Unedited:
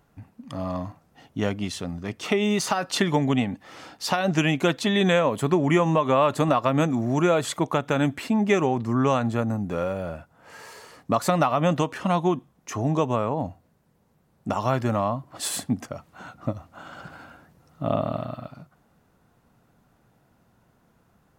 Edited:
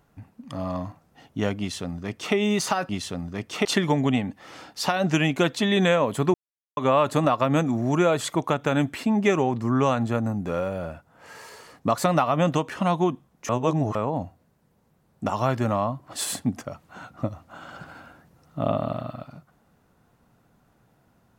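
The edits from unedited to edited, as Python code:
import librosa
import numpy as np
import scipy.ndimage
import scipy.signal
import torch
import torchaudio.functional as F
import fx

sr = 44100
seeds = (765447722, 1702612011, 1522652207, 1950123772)

y = fx.edit(x, sr, fx.duplicate(start_s=1.59, length_s=0.76, to_s=2.89),
    fx.silence(start_s=5.58, length_s=0.43),
    fx.reverse_span(start_s=12.73, length_s=0.46), tone=tone)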